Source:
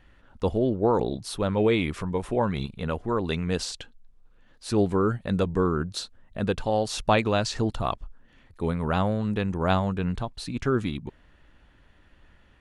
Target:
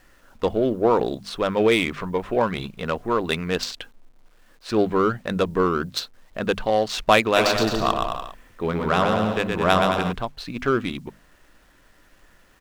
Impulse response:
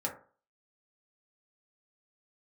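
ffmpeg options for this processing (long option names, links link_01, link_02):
-filter_complex "[0:a]bandreject=frequency=50:width_type=h:width=6,bandreject=frequency=100:width_type=h:width=6,bandreject=frequency=150:width_type=h:width=6,bandreject=frequency=200:width_type=h:width=6,bandreject=frequency=250:width_type=h:width=6,adynamicsmooth=sensitivity=4:basefreq=2300,tiltshelf=frequency=730:gain=-3,bandreject=frequency=860:width=12,asplit=3[link_01][link_02][link_03];[link_01]afade=type=out:start_time=7.35:duration=0.02[link_04];[link_02]aecho=1:1:120|216|292.8|354.2|403.4:0.631|0.398|0.251|0.158|0.1,afade=type=in:start_time=7.35:duration=0.02,afade=type=out:start_time=10.11:duration=0.02[link_05];[link_03]afade=type=in:start_time=10.11:duration=0.02[link_06];[link_04][link_05][link_06]amix=inputs=3:normalize=0,acrusher=bits=10:mix=0:aa=0.000001,equalizer=frequency=77:width=0.68:gain=-8.5,volume=6dB"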